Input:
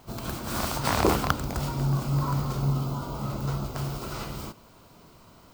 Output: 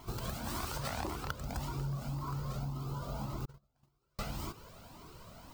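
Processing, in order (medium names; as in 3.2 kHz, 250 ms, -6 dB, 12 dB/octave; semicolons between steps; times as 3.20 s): 3.45–4.19 s: gate -24 dBFS, range -45 dB; compression 6:1, threshold -36 dBFS, peak gain reduction 18 dB; Shepard-style flanger rising 1.8 Hz; trim +4.5 dB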